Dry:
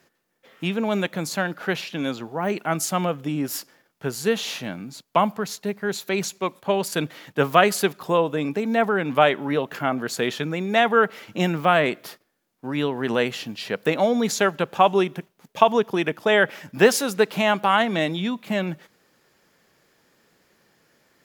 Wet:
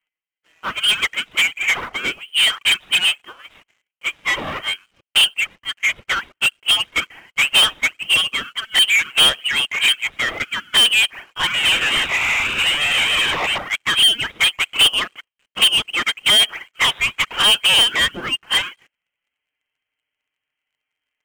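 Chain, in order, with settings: 11.54–13.58 infinite clipping; Chebyshev high-pass 610 Hz, order 5; envelope flanger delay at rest 6.4 ms, full sweep at -19 dBFS; dynamic EQ 1600 Hz, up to +4 dB, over -45 dBFS, Q 2.3; overdrive pedal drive 27 dB, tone 1400 Hz, clips at -5.5 dBFS; inverted band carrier 3800 Hz; sample leveller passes 3; upward expander 2.5:1, over -22 dBFS; gain -2 dB

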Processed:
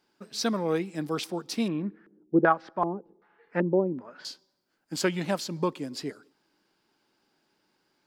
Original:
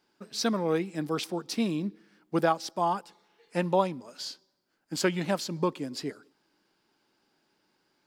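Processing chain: 1.68–4.25 LFO low-pass square 1.3 Hz 380–1600 Hz

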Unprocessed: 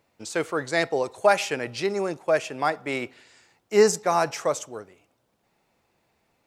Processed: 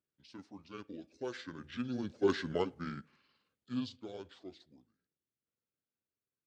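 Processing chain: delay-line pitch shifter -8.5 st; Doppler pass-by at 2.39, 10 m/s, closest 2 m; HPF 83 Hz; bell 830 Hz -8.5 dB 1.3 oct; gain -1 dB

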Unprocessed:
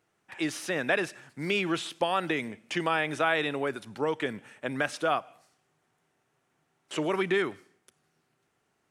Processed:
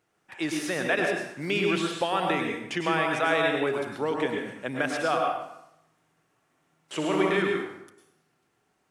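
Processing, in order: 5.18–7.3 flutter echo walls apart 10.8 m, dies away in 0.64 s; plate-style reverb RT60 0.79 s, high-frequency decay 0.75×, pre-delay 90 ms, DRR 1 dB

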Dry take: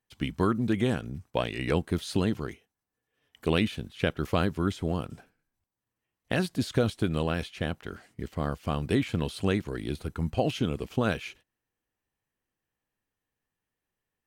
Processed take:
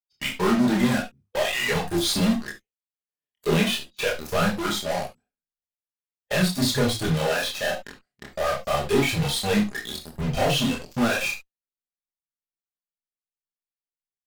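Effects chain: spectral noise reduction 22 dB; in parallel at -5.5 dB: fuzz box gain 50 dB, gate -47 dBFS; on the sum: chorus voices 2, 1.2 Hz, delay 27 ms, depth 3 ms; reverb, pre-delay 5 ms, DRR 4 dB; gain -2.5 dB

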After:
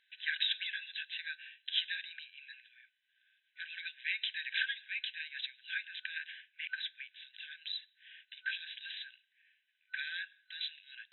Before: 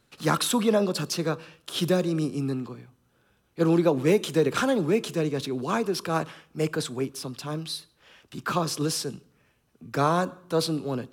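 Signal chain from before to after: FFT band-pass 1500–4000 Hz

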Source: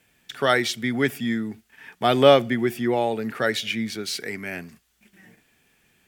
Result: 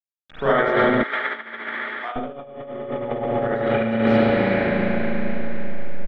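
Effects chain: level-crossing sampler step -32.5 dBFS; LPF 1700 Hz 12 dB/oct; echo 0.101 s -10.5 dB; reverb RT60 4.5 s, pre-delay 35 ms, DRR -14.5 dB; negative-ratio compressor -12 dBFS, ratio -0.5; 1.03–2.16 HPF 1100 Hz 12 dB/oct; gain -6.5 dB

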